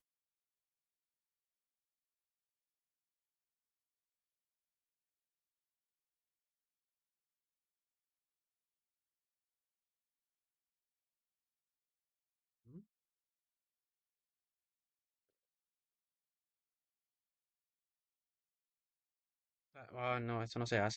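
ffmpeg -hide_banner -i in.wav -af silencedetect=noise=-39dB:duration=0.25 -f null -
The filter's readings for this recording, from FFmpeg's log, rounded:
silence_start: 0.00
silence_end: 19.98 | silence_duration: 19.98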